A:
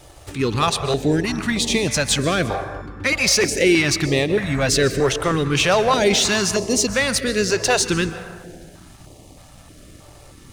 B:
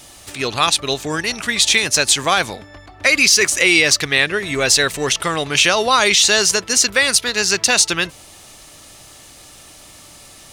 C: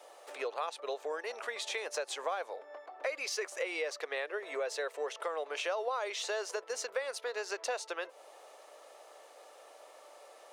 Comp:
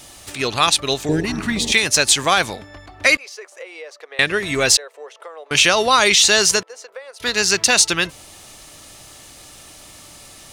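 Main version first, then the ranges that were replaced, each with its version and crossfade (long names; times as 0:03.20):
B
0:01.09–0:01.72: punch in from A
0:03.17–0:04.19: punch in from C
0:04.77–0:05.51: punch in from C
0:06.63–0:07.20: punch in from C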